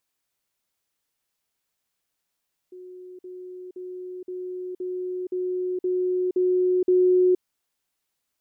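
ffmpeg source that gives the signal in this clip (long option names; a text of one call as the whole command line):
ffmpeg -f lavfi -i "aevalsrc='pow(10,(-39+3*floor(t/0.52))/20)*sin(2*PI*365*t)*clip(min(mod(t,0.52),0.47-mod(t,0.52))/0.005,0,1)':duration=4.68:sample_rate=44100" out.wav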